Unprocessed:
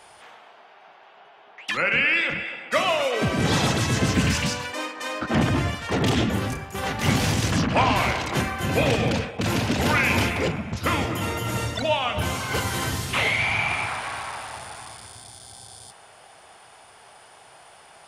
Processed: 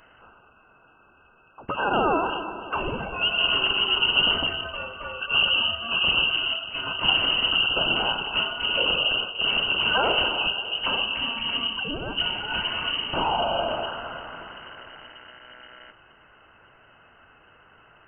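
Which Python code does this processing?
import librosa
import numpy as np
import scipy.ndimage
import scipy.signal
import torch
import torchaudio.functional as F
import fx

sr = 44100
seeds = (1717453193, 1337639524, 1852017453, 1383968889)

y = fx.brickwall_bandstop(x, sr, low_hz=430.0, high_hz=1400.0)
y = fx.echo_alternate(y, sr, ms=302, hz=1600.0, feedback_pct=52, wet_db=-13.0)
y = np.repeat(y[::4], 4)[:len(y)]
y = fx.freq_invert(y, sr, carrier_hz=3000)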